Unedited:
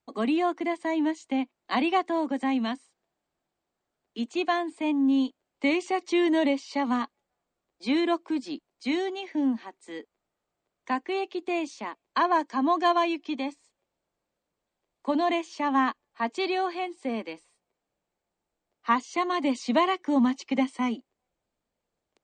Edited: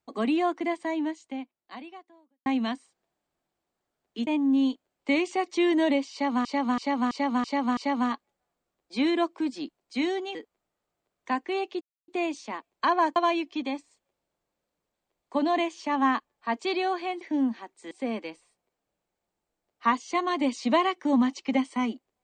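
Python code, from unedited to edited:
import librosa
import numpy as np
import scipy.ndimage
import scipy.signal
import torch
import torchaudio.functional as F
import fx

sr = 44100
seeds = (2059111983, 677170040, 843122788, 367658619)

y = fx.edit(x, sr, fx.fade_out_span(start_s=0.73, length_s=1.73, curve='qua'),
    fx.cut(start_s=4.27, length_s=0.55),
    fx.repeat(start_s=6.67, length_s=0.33, count=6),
    fx.move(start_s=9.25, length_s=0.7, to_s=16.94),
    fx.insert_silence(at_s=11.41, length_s=0.27),
    fx.cut(start_s=12.49, length_s=0.4), tone=tone)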